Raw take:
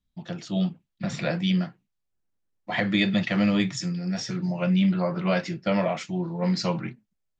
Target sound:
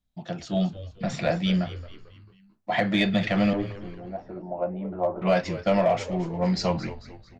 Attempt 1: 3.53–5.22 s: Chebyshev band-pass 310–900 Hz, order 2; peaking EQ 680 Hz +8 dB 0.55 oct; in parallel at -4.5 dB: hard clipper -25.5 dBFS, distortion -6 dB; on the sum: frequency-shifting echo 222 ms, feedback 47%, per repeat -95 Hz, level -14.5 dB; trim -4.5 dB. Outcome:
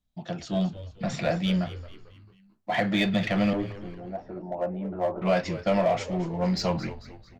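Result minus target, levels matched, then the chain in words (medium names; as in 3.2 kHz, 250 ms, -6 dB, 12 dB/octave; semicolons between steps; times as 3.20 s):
hard clipper: distortion +10 dB
3.53–5.22 s: Chebyshev band-pass 310–900 Hz, order 2; peaking EQ 680 Hz +8 dB 0.55 oct; in parallel at -4.5 dB: hard clipper -16.5 dBFS, distortion -16 dB; on the sum: frequency-shifting echo 222 ms, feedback 47%, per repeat -95 Hz, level -14.5 dB; trim -4.5 dB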